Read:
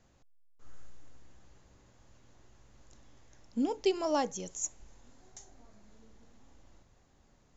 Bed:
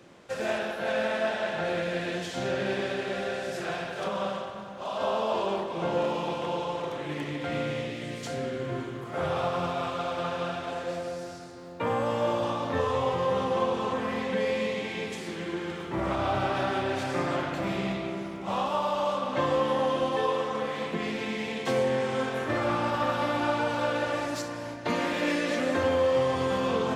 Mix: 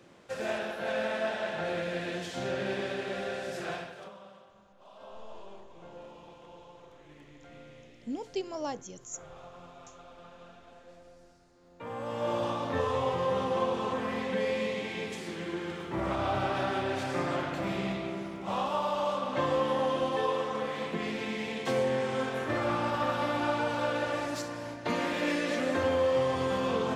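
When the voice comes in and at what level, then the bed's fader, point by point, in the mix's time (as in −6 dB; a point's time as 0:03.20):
4.50 s, −5.5 dB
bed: 0:03.74 −3.5 dB
0:04.22 −20.5 dB
0:11.46 −20.5 dB
0:12.36 −2.5 dB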